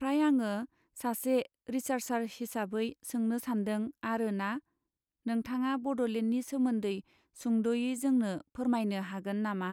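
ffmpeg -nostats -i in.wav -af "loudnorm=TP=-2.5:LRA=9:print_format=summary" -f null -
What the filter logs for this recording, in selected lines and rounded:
Input Integrated:    -33.0 LUFS
Input True Peak:     -19.0 dBTP
Input LRA:             2.3 LU
Input Threshold:     -43.1 LUFS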